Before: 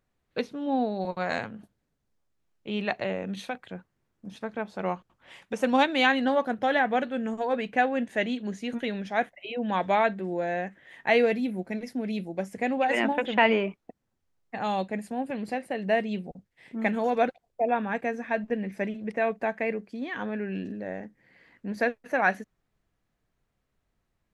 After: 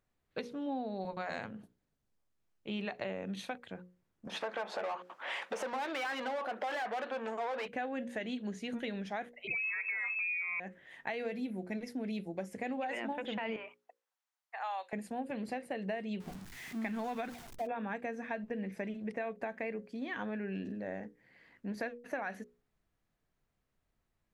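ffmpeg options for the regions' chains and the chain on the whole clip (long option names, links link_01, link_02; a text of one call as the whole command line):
ffmpeg -i in.wav -filter_complex "[0:a]asettb=1/sr,asplit=3[link_01][link_02][link_03];[link_01]atrim=end=4.274[link_04];[link_02]atrim=start=4.27:end=7.68,asetpts=PTS-STARTPTS,afade=type=in:duration=0.004:curve=qsin,afade=type=out:start_time=3.406:duration=0.004:curve=qsin,asplit=2[link_05][link_06];[link_06]highpass=frequency=720:poles=1,volume=33dB,asoftclip=type=tanh:threshold=-7.5dB[link_07];[link_05][link_07]amix=inputs=2:normalize=0,lowpass=frequency=1200:poles=1,volume=-6dB,acompressor=threshold=-35dB:ratio=1.5:attack=3.2:release=140:knee=1:detection=peak,highpass=440[link_08];[link_03]atrim=start=7.676[link_09];[link_04][link_08]acrossfade=duration=0.004:curve1=hsin:curve2=qsin[link_10];[link_10][link_09]acrossfade=duration=0.004:curve1=qsin:curve2=hsin,asettb=1/sr,asplit=3[link_11][link_12][link_13];[link_11]atrim=end=9.474[link_14];[link_12]atrim=start=9.47:end=10.6,asetpts=PTS-STARTPTS,afade=type=in:duration=0.004:curve=qsin,afade=type=out:start_time=1.126:duration=0.004:curve=qsin,equalizer=frequency=300:width=0.33:gain=14,aecho=1:1:3.4:0.73,atrim=end_sample=49833,lowpass=frequency=2400:width_type=q:width=0.5098,lowpass=frequency=2400:width_type=q:width=0.6013,lowpass=frequency=2400:width_type=q:width=0.9,lowpass=frequency=2400:width_type=q:width=2.563,afreqshift=-2800[link_15];[link_13]atrim=start=10.596[link_16];[link_14][link_15]acrossfade=duration=0.004:curve1=hsin:curve2=qsin[link_17];[link_17][link_16]acrossfade=duration=0.004:curve1=qsin:curve2=hsin,asettb=1/sr,asplit=3[link_18][link_19][link_20];[link_18]atrim=end=13.564[link_21];[link_19]atrim=start=13.56:end=14.93,asetpts=PTS-STARTPTS,afade=type=in:duration=0.004:curve=qsin,afade=type=out:start_time=1.366:duration=0.004:curve=qsin,highpass=frequency=760:width=0.5412,highpass=frequency=760:width=1.3066,acrossover=split=2500[link_22][link_23];[link_23]acompressor=threshold=-53dB:ratio=4:attack=1:release=60[link_24];[link_22][link_24]amix=inputs=2:normalize=0[link_25];[link_20]atrim=start=14.926[link_26];[link_21][link_25]acrossfade=duration=0.004:curve1=hsin:curve2=qsin[link_27];[link_27][link_26]acrossfade=duration=0.004:curve1=qsin:curve2=hsin,asettb=1/sr,asplit=3[link_28][link_29][link_30];[link_28]atrim=end=16.204[link_31];[link_29]atrim=start=16.2:end=17.67,asetpts=PTS-STARTPTS,afade=type=in:duration=0.004:curve=qsin,afade=type=out:start_time=1.466:duration=0.004:curve=qsin,aeval=exprs='val(0)+0.5*0.0112*sgn(val(0))':channel_layout=same,equalizer=frequency=520:width_type=o:width=0.57:gain=-10.5[link_32];[link_30]atrim=start=17.666[link_33];[link_31][link_32]acrossfade=duration=0.004:curve1=hsin:curve2=qsin[link_34];[link_34][link_33]acrossfade=duration=0.004:curve1=qsin:curve2=hsin,alimiter=limit=-18dB:level=0:latency=1:release=60,bandreject=frequency=60:width_type=h:width=6,bandreject=frequency=120:width_type=h:width=6,bandreject=frequency=180:width_type=h:width=6,bandreject=frequency=240:width_type=h:width=6,bandreject=frequency=300:width_type=h:width=6,bandreject=frequency=360:width_type=h:width=6,bandreject=frequency=420:width_type=h:width=6,bandreject=frequency=480:width_type=h:width=6,bandreject=frequency=540:width_type=h:width=6,acompressor=threshold=-30dB:ratio=6,volume=-4dB" out.wav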